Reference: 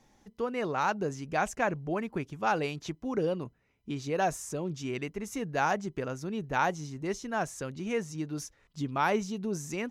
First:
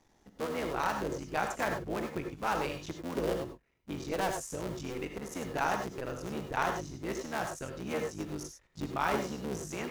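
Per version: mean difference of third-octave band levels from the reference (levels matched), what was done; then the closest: 10.0 dB: cycle switcher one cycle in 3, muted; gated-style reverb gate 120 ms rising, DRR 4.5 dB; trim -2.5 dB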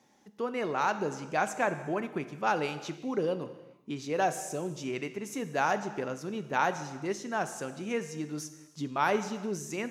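4.5 dB: high-pass 180 Hz 12 dB/octave; gated-style reverb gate 460 ms falling, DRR 10 dB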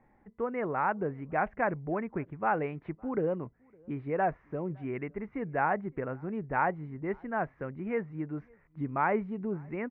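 6.5 dB: elliptic low-pass 2.1 kHz, stop band 80 dB; echo from a far wall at 96 m, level -29 dB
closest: second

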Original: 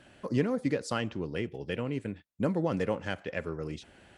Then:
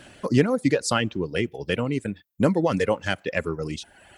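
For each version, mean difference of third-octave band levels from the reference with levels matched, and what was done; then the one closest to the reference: 3.5 dB: reverb removal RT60 0.93 s; treble shelf 4.7 kHz +7.5 dB; trim +9 dB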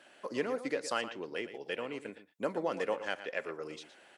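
6.5 dB: high-pass 460 Hz 12 dB/octave; echo from a far wall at 20 m, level -12 dB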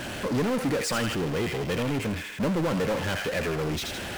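12.0 dB: feedback echo behind a high-pass 81 ms, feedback 45%, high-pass 1.8 kHz, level -6 dB; power-law waveshaper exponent 0.35; trim -5 dB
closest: first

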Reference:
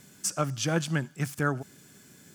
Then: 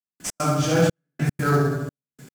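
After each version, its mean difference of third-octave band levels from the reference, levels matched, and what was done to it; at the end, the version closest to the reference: 12.5 dB: feedback delay 71 ms, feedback 51%, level -5 dB; simulated room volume 250 m³, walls mixed, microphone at 3 m; trance gate "..x.xxxxx." 151 bpm -60 dB; in parallel at -8 dB: sample-rate reducer 5.9 kHz, jitter 20%; on the sum: trim -5.5 dB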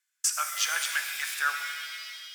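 17.5 dB: gate -46 dBFS, range -31 dB; in parallel at 0 dB: compression, threshold -34 dBFS, peak gain reduction 12.5 dB; on the sum: ladder high-pass 1.2 kHz, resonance 30%; pitch-shifted reverb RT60 1.9 s, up +7 st, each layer -2 dB, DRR 5.5 dB; trim +7 dB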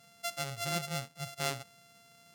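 8.0 dB: sorted samples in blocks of 64 samples; treble shelf 12 kHz -10.5 dB; harmonic-percussive split percussive -16 dB; treble shelf 2.3 kHz +10 dB; trim -8.5 dB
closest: third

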